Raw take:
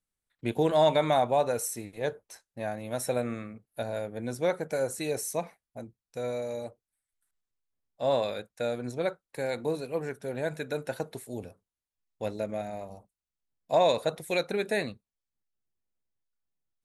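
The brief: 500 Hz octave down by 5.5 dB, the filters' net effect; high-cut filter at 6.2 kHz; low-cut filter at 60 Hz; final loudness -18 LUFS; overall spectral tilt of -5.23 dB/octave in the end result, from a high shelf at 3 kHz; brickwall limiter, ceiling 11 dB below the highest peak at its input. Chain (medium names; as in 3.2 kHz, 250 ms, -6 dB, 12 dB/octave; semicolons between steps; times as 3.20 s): high-pass 60 Hz; low-pass 6.2 kHz; peaking EQ 500 Hz -6.5 dB; treble shelf 3 kHz -6 dB; trim +22 dB; peak limiter -5.5 dBFS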